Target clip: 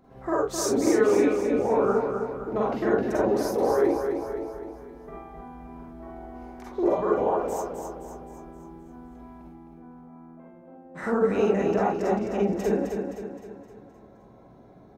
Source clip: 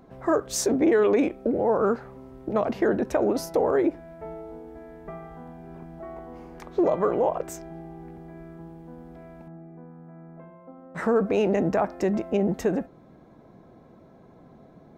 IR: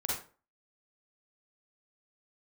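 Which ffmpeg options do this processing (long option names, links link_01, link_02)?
-filter_complex "[0:a]aecho=1:1:260|520|780|1040|1300|1560:0.501|0.246|0.12|0.059|0.0289|0.0142[link_01];[1:a]atrim=start_sample=2205,afade=type=out:start_time=0.14:duration=0.01,atrim=end_sample=6615[link_02];[link_01][link_02]afir=irnorm=-1:irlink=0,volume=-5.5dB"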